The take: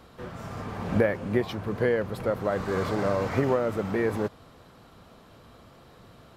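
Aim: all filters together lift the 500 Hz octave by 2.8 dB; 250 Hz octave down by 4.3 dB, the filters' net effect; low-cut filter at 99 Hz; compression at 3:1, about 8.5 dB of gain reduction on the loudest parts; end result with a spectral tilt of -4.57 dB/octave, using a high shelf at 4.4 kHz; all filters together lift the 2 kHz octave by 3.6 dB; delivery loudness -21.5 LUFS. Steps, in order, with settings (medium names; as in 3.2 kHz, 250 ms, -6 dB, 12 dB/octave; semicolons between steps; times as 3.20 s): high-pass 99 Hz; peaking EQ 250 Hz -8 dB; peaking EQ 500 Hz +5 dB; peaking EQ 2 kHz +3 dB; treble shelf 4.4 kHz +7 dB; compression 3:1, threshold -27 dBFS; trim +10 dB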